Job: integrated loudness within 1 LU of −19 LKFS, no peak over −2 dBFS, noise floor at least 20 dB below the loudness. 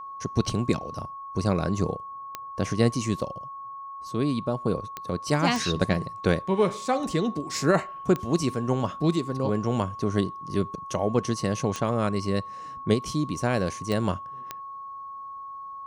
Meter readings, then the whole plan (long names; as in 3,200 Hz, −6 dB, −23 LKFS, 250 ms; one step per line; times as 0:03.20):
number of clicks 7; interfering tone 1,100 Hz; level of the tone −36 dBFS; integrated loudness −27.0 LKFS; sample peak −8.5 dBFS; target loudness −19.0 LKFS
→ click removal
notch filter 1,100 Hz, Q 30
level +8 dB
brickwall limiter −2 dBFS